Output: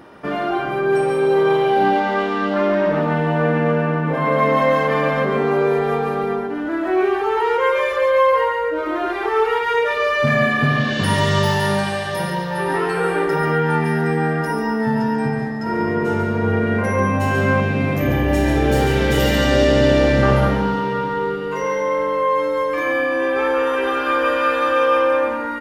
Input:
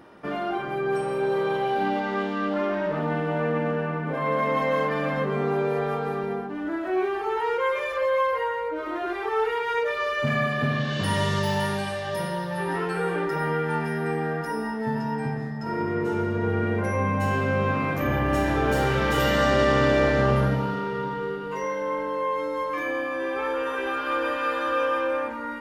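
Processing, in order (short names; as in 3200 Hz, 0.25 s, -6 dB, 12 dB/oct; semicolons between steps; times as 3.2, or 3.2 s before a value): 17.6–20.23 bell 1200 Hz -10.5 dB 0.9 oct; echo 0.14 s -6.5 dB; gain +6.5 dB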